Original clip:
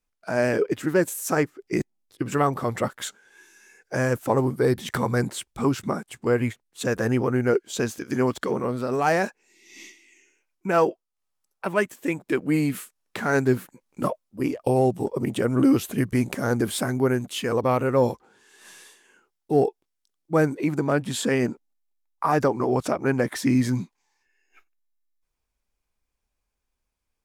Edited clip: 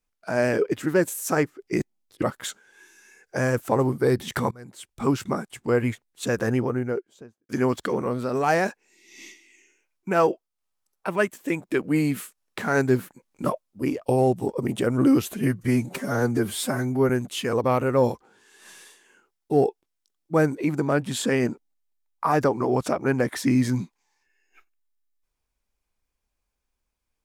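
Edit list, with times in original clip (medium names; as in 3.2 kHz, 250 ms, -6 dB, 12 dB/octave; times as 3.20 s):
2.22–2.80 s: delete
5.09–5.63 s: fade in quadratic, from -23.5 dB
6.93–8.07 s: studio fade out
15.92–17.09 s: stretch 1.5×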